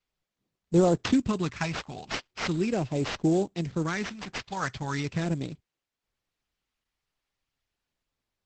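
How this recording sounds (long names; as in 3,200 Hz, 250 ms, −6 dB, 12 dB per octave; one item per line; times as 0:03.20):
phaser sweep stages 2, 0.39 Hz, lowest notch 340–1,700 Hz
aliases and images of a low sample rate 7,700 Hz, jitter 20%
Opus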